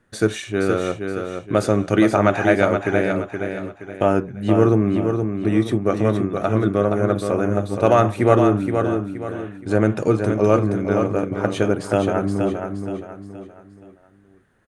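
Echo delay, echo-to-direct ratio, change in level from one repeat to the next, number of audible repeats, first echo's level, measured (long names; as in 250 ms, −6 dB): 472 ms, −5.5 dB, −8.5 dB, 4, −6.0 dB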